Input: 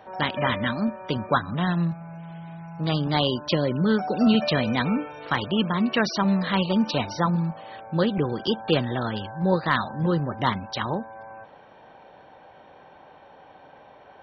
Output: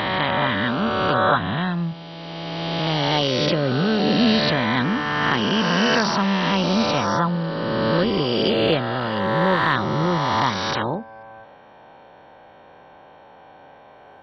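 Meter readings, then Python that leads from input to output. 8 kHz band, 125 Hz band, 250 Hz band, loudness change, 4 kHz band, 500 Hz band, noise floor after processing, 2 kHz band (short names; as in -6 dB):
n/a, +2.0 dB, +2.0 dB, +4.0 dB, +6.5 dB, +5.0 dB, -47 dBFS, +7.0 dB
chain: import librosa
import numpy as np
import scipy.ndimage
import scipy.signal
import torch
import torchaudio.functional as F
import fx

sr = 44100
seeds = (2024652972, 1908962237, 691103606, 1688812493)

y = fx.spec_swells(x, sr, rise_s=2.92)
y = y * librosa.db_to_amplitude(-1.0)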